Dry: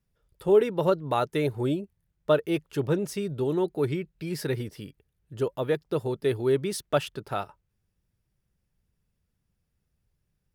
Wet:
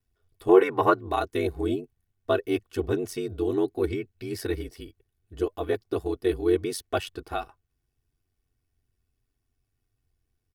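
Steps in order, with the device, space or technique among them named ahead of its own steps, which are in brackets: 0.49–0.99 graphic EQ 1000/2000/4000 Hz +11/+9/-4 dB; ring-modulated robot voice (ring modulator 46 Hz; comb 2.7 ms, depth 81%)

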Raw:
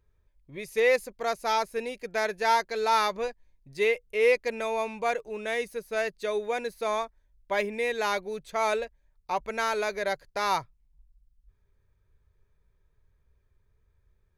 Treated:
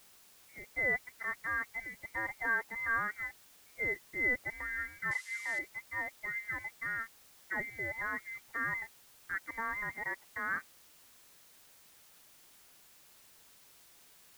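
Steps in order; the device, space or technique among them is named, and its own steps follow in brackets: scrambled radio voice (BPF 350–2600 Hz; inverted band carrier 2500 Hz; white noise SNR 21 dB); 5.11–5.59 weighting filter ITU-R 468; gain -8.5 dB

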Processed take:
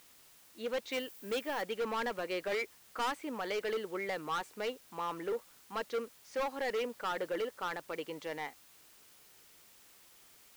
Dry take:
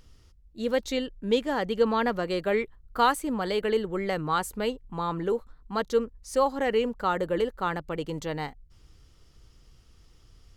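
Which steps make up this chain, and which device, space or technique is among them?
drive-through speaker (BPF 360–3900 Hz; bell 2300 Hz +7 dB 0.59 oct; hard clip -25 dBFS, distortion -8 dB; white noise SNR 22 dB); 0.92–1.62 high shelf 12000 Hz +11.5 dB; gain -5.5 dB

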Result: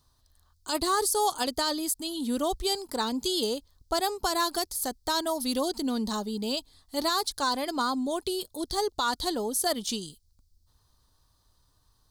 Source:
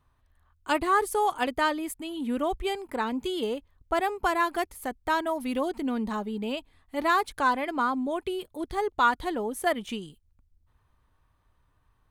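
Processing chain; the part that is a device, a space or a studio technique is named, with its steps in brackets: over-bright horn tweeter (resonant high shelf 3300 Hz +12 dB, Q 3; limiter -17 dBFS, peak gain reduction 10 dB)

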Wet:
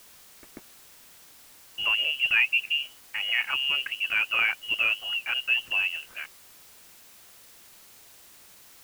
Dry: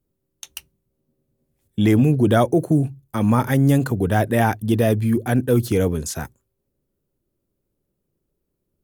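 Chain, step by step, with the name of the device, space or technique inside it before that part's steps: scrambled radio voice (BPF 350–3000 Hz; inverted band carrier 3100 Hz; white noise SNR 22 dB); gain -4 dB

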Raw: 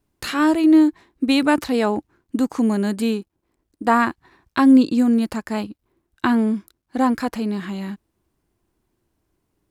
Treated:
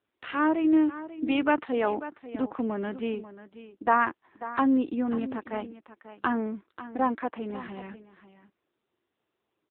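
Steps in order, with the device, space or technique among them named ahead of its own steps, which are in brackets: 3.91–5.66 HPF 130 Hz 12 dB/oct; satellite phone (BPF 340–3200 Hz; echo 0.54 s -14 dB; gain -4 dB; AMR-NB 6.7 kbps 8000 Hz)

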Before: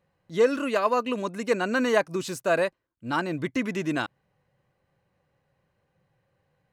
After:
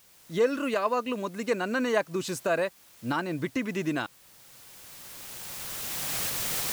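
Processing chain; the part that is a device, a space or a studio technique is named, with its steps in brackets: cheap recorder with automatic gain (white noise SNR 27 dB; recorder AGC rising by 13 dB/s); gain -3.5 dB

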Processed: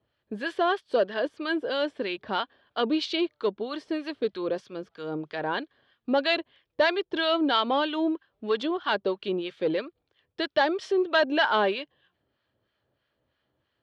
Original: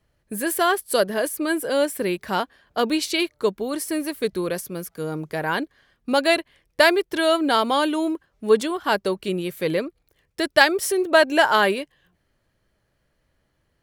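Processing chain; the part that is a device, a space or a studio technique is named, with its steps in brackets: guitar amplifier with harmonic tremolo (harmonic tremolo 3.1 Hz, depth 70%, crossover 970 Hz; soft clip -14 dBFS, distortion -16 dB; speaker cabinet 110–4200 Hz, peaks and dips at 170 Hz -10 dB, 2100 Hz -5 dB, 3300 Hz +5 dB)

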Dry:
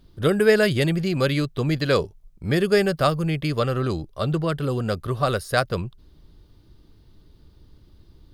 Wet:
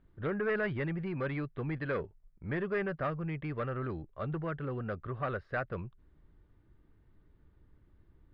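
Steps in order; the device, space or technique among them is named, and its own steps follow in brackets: overdriven synthesiser ladder filter (soft clip -16.5 dBFS, distortion -12 dB; ladder low-pass 2300 Hz, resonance 40%); gain -3 dB

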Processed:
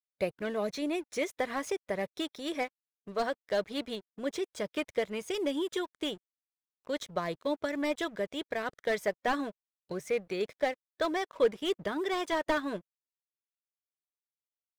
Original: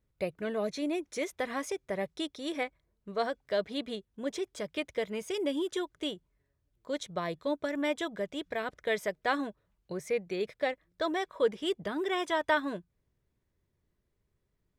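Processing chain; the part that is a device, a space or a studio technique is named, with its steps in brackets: early transistor amplifier (crossover distortion -55.5 dBFS; slew limiter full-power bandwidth 54 Hz); harmonic-percussive split percussive +3 dB

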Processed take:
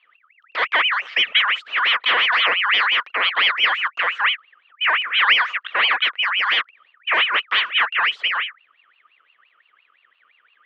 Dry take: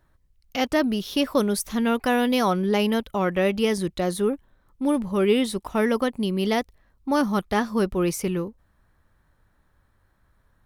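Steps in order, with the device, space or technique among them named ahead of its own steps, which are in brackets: voice changer toy (ring modulator with a swept carrier 2000 Hz, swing 40%, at 5.8 Hz; speaker cabinet 450–3500 Hz, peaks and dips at 480 Hz +4 dB, 820 Hz -4 dB, 1200 Hz +7 dB, 1900 Hz +5 dB, 3100 Hz +8 dB); gain +2.5 dB

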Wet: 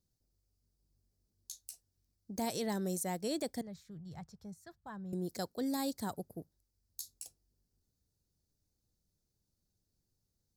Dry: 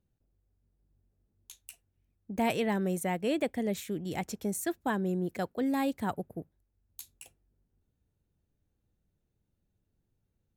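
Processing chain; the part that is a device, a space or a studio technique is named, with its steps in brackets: over-bright horn tweeter (resonant high shelf 3600 Hz +10 dB, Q 3; limiter -21.5 dBFS, peak gain reduction 9 dB); 3.61–5.13 EQ curve 160 Hz 0 dB, 280 Hz -20 dB, 1200 Hz -5 dB, 10000 Hz -29 dB; gain -5.5 dB

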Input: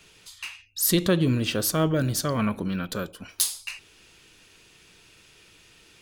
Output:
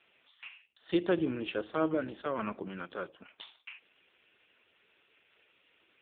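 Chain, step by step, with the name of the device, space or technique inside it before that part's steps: dynamic EQ 330 Hz, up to +5 dB, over -40 dBFS, Q 6; telephone (BPF 350–3400 Hz; gain -4 dB; AMR-NB 5.15 kbps 8000 Hz)

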